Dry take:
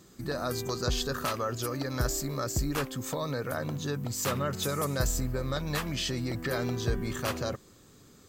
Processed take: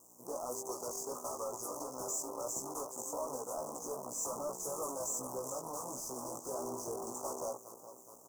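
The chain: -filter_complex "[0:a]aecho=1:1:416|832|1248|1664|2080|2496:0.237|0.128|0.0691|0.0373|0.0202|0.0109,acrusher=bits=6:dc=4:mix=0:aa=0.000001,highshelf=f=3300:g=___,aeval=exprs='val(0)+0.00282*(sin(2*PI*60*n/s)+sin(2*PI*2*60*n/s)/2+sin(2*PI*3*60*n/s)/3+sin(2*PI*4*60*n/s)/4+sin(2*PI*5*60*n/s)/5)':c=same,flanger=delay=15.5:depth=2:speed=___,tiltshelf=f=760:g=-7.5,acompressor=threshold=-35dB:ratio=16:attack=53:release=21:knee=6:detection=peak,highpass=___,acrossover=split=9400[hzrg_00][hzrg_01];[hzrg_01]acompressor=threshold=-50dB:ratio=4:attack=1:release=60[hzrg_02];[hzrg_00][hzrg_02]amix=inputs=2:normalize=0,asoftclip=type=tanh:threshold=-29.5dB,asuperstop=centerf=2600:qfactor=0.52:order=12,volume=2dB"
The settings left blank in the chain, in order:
-5.5, 1.5, 330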